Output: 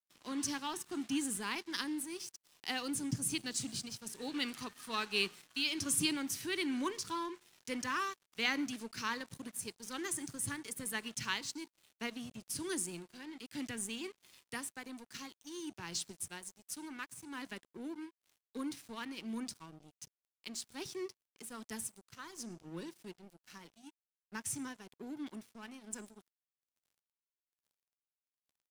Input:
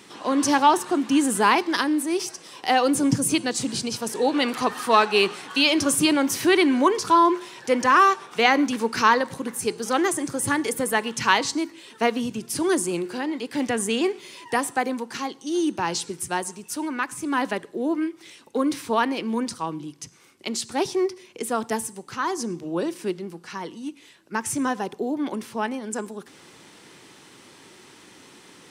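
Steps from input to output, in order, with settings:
guitar amp tone stack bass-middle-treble 6-0-2
shaped tremolo triangle 1.2 Hz, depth 40%
dead-zone distortion −59 dBFS
level +7 dB

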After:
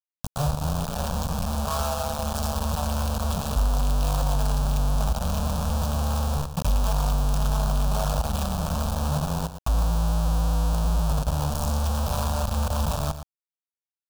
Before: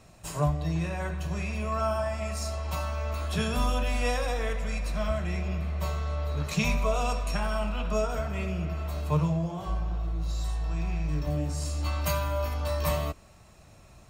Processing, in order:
RIAA equalisation playback
downward compressor 2.5 to 1, threshold −27 dBFS, peak gain reduction 13 dB
bit reduction 4 bits
phaser with its sweep stopped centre 840 Hz, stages 4
single-tap delay 115 ms −11 dB

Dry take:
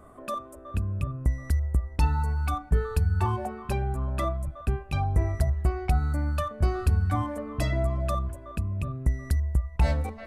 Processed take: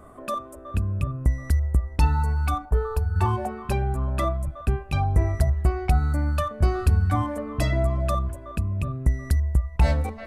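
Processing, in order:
0:02.65–0:03.16: octave-band graphic EQ 125/250/500/1,000/2,000/4,000/8,000 Hz −10/−9/+3/+7/−11/−5/−6 dB
level +3.5 dB

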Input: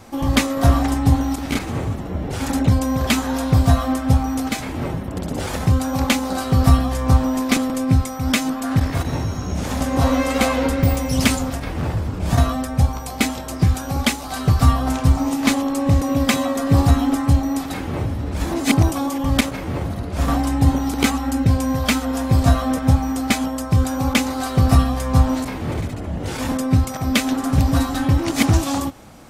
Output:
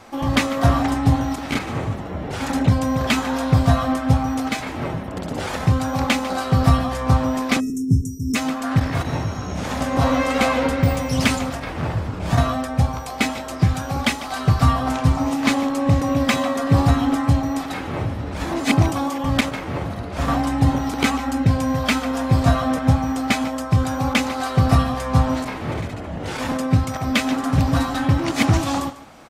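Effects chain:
single-tap delay 148 ms −17 dB
time-frequency box erased 0:07.60–0:08.35, 470–5,200 Hz
tuned comb filter 640 Hz, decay 0.4 s, mix 40%
mid-hump overdrive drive 10 dB, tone 3,100 Hz, clips at −7 dBFS
dynamic equaliser 130 Hz, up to +8 dB, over −38 dBFS, Q 0.99
level +2 dB

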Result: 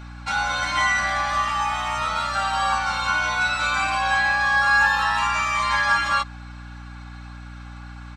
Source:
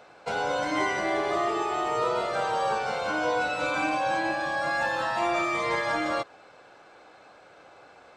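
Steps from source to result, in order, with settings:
Chebyshev band-stop filter 140–1,100 Hz, order 2
comb filter 3.6 ms, depth 95%
mains hum 60 Hz, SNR 15 dB
level +7 dB

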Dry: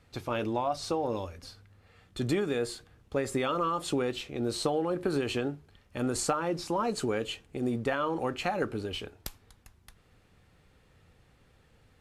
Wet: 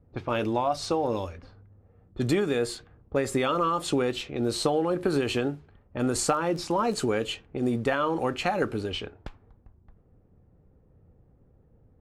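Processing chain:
0:06.30–0:06.94: surface crackle 25 per second −36 dBFS
low-pass that shuts in the quiet parts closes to 460 Hz, open at −29.5 dBFS
level +4 dB

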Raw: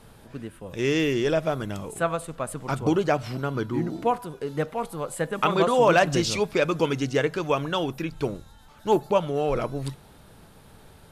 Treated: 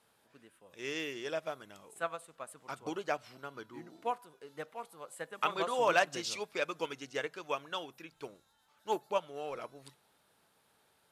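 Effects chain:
high-pass filter 810 Hz 6 dB per octave
expander for the loud parts 1.5 to 1, over −37 dBFS
level −4.5 dB

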